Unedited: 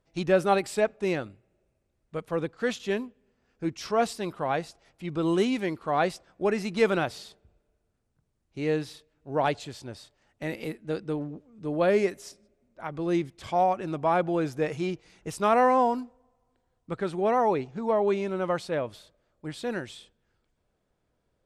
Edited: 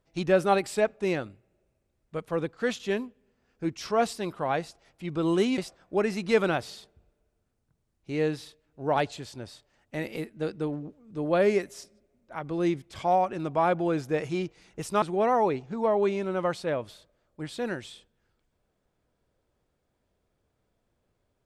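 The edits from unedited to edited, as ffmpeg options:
-filter_complex "[0:a]asplit=3[a][b][c];[a]atrim=end=5.582[d];[b]atrim=start=6.058:end=15.502[e];[c]atrim=start=17.068[f];[d][e]acrossfade=d=0.004:c1=hsin:c2=hsin[g];[g][f]acrossfade=d=0.004:c1=hsin:c2=hsin"

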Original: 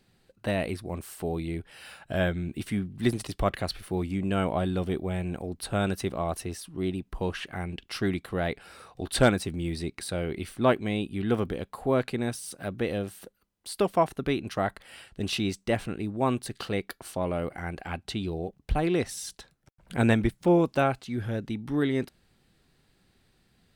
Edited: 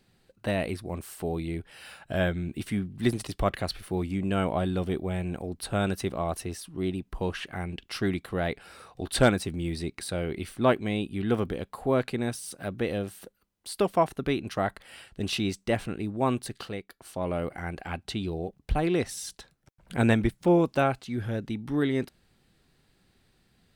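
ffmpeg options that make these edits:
-filter_complex "[0:a]asplit=3[a][b][c];[a]atrim=end=16.88,asetpts=PTS-STARTPTS,afade=t=out:st=16.45:d=0.43:silence=0.251189[d];[b]atrim=start=16.88:end=16.89,asetpts=PTS-STARTPTS,volume=-12dB[e];[c]atrim=start=16.89,asetpts=PTS-STARTPTS,afade=t=in:d=0.43:silence=0.251189[f];[d][e][f]concat=n=3:v=0:a=1"

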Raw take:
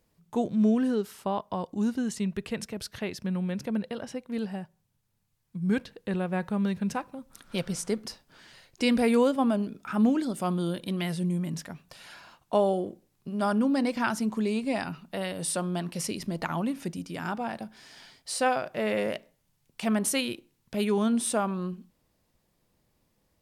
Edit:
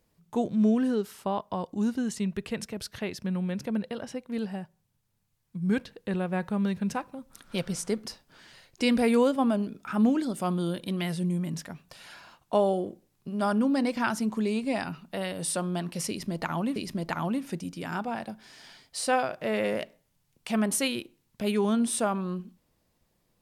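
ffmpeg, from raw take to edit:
-filter_complex "[0:a]asplit=2[a][b];[a]atrim=end=16.762[c];[b]atrim=start=16.088[d];[c][d]acrossfade=d=0.004:c1=hsin:c2=hsin"

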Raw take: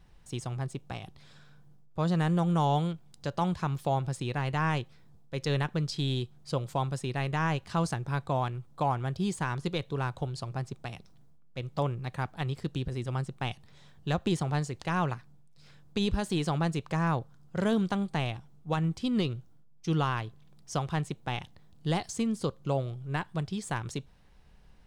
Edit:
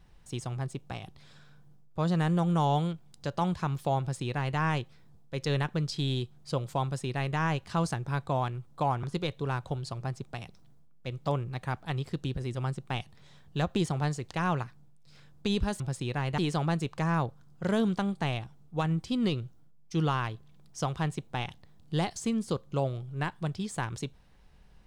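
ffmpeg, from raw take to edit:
-filter_complex "[0:a]asplit=4[a][b][c][d];[a]atrim=end=9.032[e];[b]atrim=start=9.538:end=16.312[f];[c]atrim=start=3.998:end=4.582[g];[d]atrim=start=16.308[h];[e][f]acrossfade=d=0.004:c1=hsin:c2=hsin[i];[i][g]acrossfade=d=0.004:c1=hsin:c2=hsin[j];[j][h]acrossfade=d=0.004:c1=hsin:c2=hsin"

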